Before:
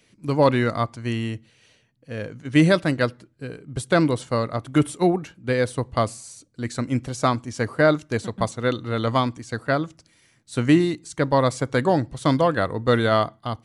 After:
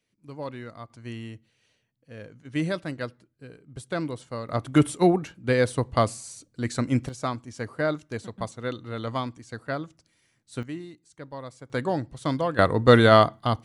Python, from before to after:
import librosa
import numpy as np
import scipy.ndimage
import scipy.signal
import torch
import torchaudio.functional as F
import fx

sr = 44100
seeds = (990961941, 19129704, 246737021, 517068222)

y = fx.gain(x, sr, db=fx.steps((0.0, -18.0), (0.9, -11.0), (4.49, 0.0), (7.09, -8.5), (10.63, -19.5), (11.7, -7.0), (12.59, 4.0)))